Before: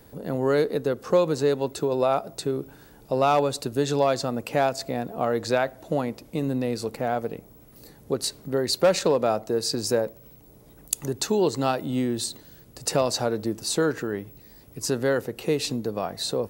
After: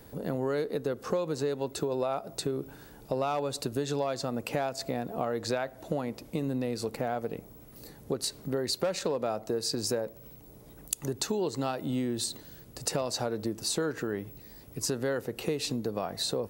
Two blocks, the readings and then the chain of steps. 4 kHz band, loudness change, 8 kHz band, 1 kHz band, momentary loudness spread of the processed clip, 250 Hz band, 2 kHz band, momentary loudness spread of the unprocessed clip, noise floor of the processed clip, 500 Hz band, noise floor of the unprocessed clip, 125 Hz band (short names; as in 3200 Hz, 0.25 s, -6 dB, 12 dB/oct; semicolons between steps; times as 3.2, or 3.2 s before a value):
-4.5 dB, -6.5 dB, -4.0 dB, -8.0 dB, 13 LU, -5.5 dB, -7.0 dB, 9 LU, -52 dBFS, -7.5 dB, -51 dBFS, -5.0 dB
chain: compressor 4:1, threshold -28 dBFS, peak gain reduction 11.5 dB